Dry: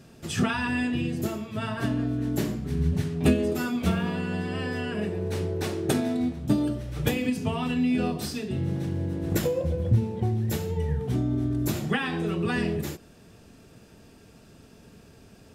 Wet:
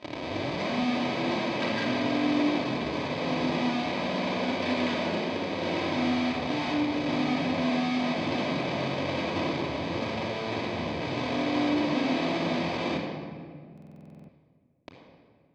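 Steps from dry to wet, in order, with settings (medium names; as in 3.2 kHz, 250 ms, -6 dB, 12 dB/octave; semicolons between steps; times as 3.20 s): tape start-up on the opening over 0.75 s; low-pass that closes with the level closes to 790 Hz, closed at -22.5 dBFS; peaking EQ 540 Hz +4.5 dB 0.95 oct; gain riding 0.5 s; Chebyshev band-stop 350–1400 Hz, order 5; Schmitt trigger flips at -39 dBFS; cabinet simulation 200–5000 Hz, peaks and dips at 200 Hz -5 dB, 350 Hz -5 dB, 530 Hz +4 dB, 1.7 kHz -4 dB, 2.5 kHz +6 dB, 4.1 kHz +5 dB; comb of notches 1.4 kHz; reverse echo 646 ms -23.5 dB; simulated room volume 3100 m³, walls mixed, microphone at 2.9 m; buffer glitch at 13.73 s, samples 2048, times 11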